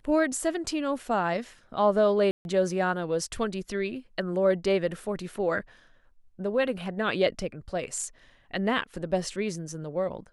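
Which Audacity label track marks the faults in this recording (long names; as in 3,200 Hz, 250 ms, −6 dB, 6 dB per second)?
2.310000	2.450000	drop-out 141 ms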